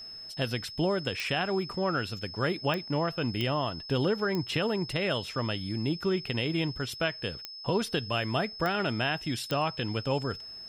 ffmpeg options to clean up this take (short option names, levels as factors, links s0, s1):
-af "adeclick=t=4,bandreject=f=5200:w=30"